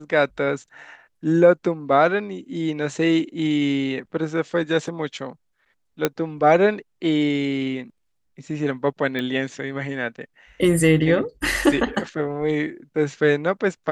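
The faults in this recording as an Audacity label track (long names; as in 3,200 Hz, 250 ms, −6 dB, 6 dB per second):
6.050000	6.050000	click −5 dBFS
9.190000	9.190000	click −16 dBFS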